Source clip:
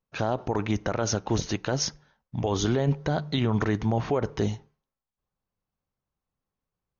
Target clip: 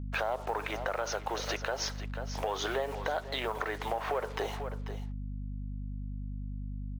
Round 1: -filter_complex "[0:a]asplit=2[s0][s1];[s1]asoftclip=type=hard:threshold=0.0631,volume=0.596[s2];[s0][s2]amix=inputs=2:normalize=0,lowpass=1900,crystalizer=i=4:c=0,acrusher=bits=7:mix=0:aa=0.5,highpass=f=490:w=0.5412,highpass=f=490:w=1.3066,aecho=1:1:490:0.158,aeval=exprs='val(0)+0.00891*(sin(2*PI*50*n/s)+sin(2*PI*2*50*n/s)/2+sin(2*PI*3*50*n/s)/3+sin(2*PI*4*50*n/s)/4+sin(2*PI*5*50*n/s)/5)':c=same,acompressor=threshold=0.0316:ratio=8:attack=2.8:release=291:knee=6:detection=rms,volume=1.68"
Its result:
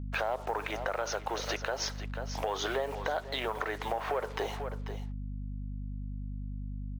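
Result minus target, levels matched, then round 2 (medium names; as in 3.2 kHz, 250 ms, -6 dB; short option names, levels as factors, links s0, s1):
hard clipper: distortion -5 dB
-filter_complex "[0:a]asplit=2[s0][s1];[s1]asoftclip=type=hard:threshold=0.0299,volume=0.596[s2];[s0][s2]amix=inputs=2:normalize=0,lowpass=1900,crystalizer=i=4:c=0,acrusher=bits=7:mix=0:aa=0.5,highpass=f=490:w=0.5412,highpass=f=490:w=1.3066,aecho=1:1:490:0.158,aeval=exprs='val(0)+0.00891*(sin(2*PI*50*n/s)+sin(2*PI*2*50*n/s)/2+sin(2*PI*3*50*n/s)/3+sin(2*PI*4*50*n/s)/4+sin(2*PI*5*50*n/s)/5)':c=same,acompressor=threshold=0.0316:ratio=8:attack=2.8:release=291:knee=6:detection=rms,volume=1.68"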